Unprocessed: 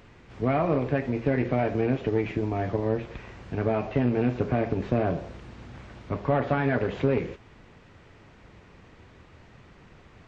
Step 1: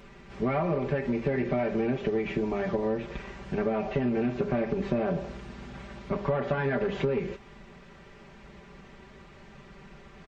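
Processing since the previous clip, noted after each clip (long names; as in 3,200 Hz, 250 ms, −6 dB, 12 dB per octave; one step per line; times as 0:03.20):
comb filter 5.1 ms, depth 95%
downward compressor 6 to 1, threshold −24 dBFS, peak gain reduction 8 dB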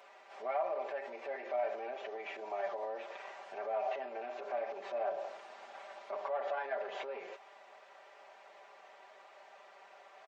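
brickwall limiter −25 dBFS, peak gain reduction 9.5 dB
four-pole ladder high-pass 600 Hz, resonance 60%
level +4.5 dB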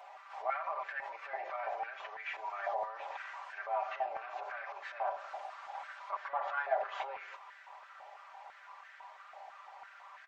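on a send at −16 dB: convolution reverb RT60 1.2 s, pre-delay 6 ms
on the sum: high-pass on a step sequencer 6 Hz 760–1,600 Hz
level −1 dB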